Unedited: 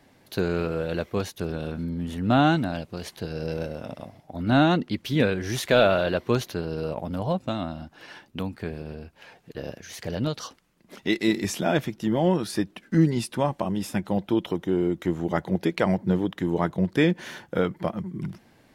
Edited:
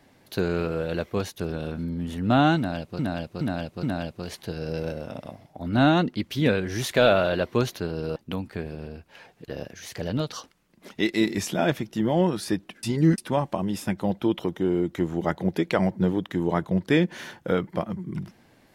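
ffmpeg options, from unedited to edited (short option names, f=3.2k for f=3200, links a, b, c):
-filter_complex "[0:a]asplit=7[a][b][c][d][e][f][g];[a]atrim=end=2.992[h];[b]atrim=start=2.568:end=2.992[i];[c]atrim=start=2.568:end=2.992[j];[d]atrim=start=2.568:end=6.902[k];[e]atrim=start=8.228:end=12.902[l];[f]atrim=start=12.898:end=13.252,asetpts=PTS-STARTPTS,areverse[m];[g]atrim=start=13.248[n];[h][i]acrossfade=d=0.004:c1=hsin:c2=hsin[o];[o][j]acrossfade=d=0.004:c1=hsin:c2=hsin[p];[p][k]acrossfade=d=0.004:c1=hsin:c2=hsin[q];[q][l]acrossfade=d=0.004:c1=hsin:c2=hsin[r];[r][m]acrossfade=d=0.004:c1=hsin:c2=hsin[s];[s][n]acrossfade=d=0.004:c1=hsin:c2=hsin"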